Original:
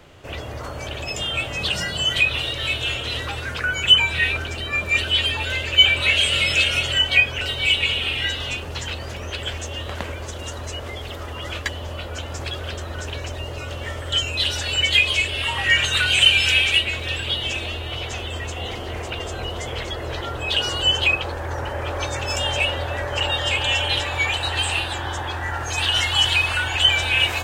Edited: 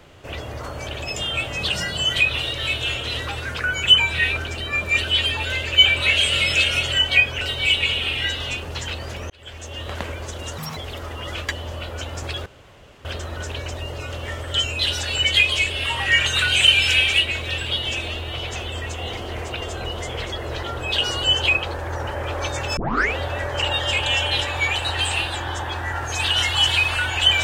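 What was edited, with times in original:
9.30–9.92 s: fade in
10.58–10.94 s: speed 191%
12.63 s: insert room tone 0.59 s
22.35 s: tape start 0.40 s

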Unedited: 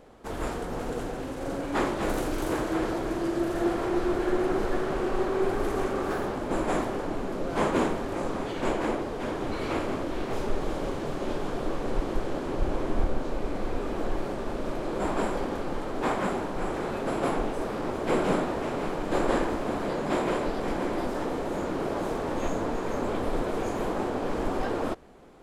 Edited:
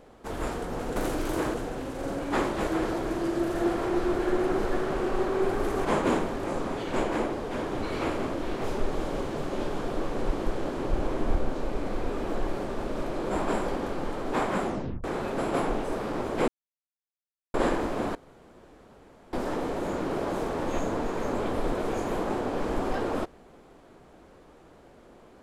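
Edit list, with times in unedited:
2.09–2.67 s: move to 0.96 s
5.85–7.54 s: delete
16.35 s: tape stop 0.38 s
18.17–19.23 s: mute
19.84–21.02 s: room tone

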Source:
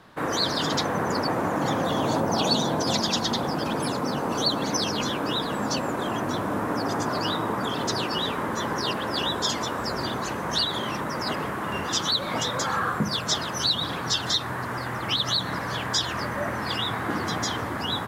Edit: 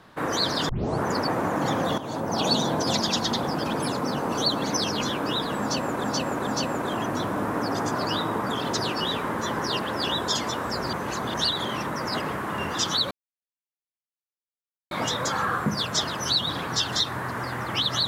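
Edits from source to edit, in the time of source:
0.69 s: tape start 0.36 s
1.98–2.49 s: fade in, from -13 dB
5.61–6.04 s: loop, 3 plays
10.07–10.48 s: reverse
12.25 s: insert silence 1.80 s

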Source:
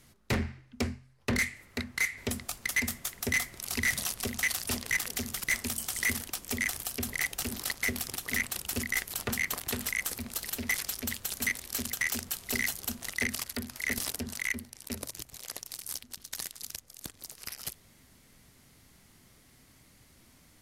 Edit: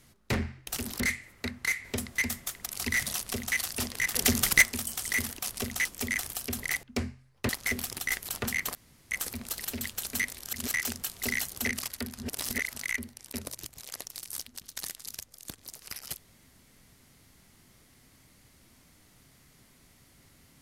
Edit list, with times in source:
0.67–1.33 s: swap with 7.33–7.66 s
2.49–2.74 s: delete
3.24–3.57 s: delete
4.07–4.48 s: copy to 6.35 s
5.06–5.53 s: gain +10 dB
8.24–8.92 s: delete
9.60–9.96 s: room tone
10.66–11.08 s: delete
11.73–12.00 s: reverse
12.92–13.21 s: delete
13.74–14.31 s: reverse

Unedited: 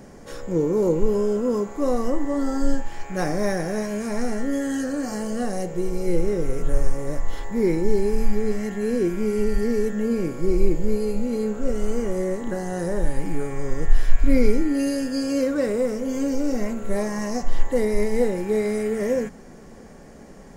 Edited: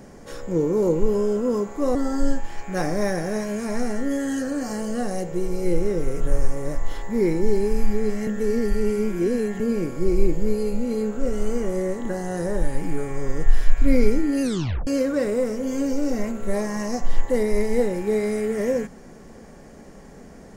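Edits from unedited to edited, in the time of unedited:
1.95–2.37 s: delete
8.69–10.02 s: reverse
14.84 s: tape stop 0.45 s

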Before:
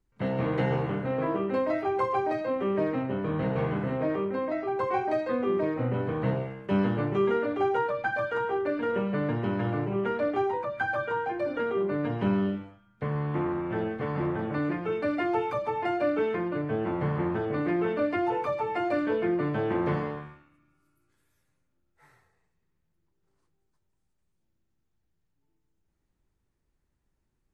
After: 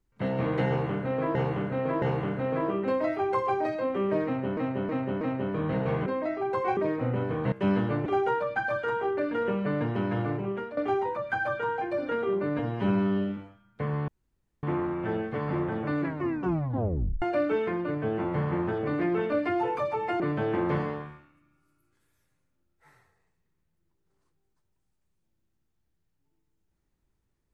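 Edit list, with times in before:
0.68–1.35 s: loop, 3 plays
2.91–3.23 s: loop, 4 plays
3.76–4.32 s: delete
5.03–5.55 s: delete
6.30–6.60 s: delete
7.14–7.54 s: delete
9.62–10.25 s: fade out equal-power, to -14 dB
12.07–12.59 s: stretch 1.5×
13.30 s: insert room tone 0.55 s
14.67 s: tape stop 1.22 s
18.87–19.37 s: delete

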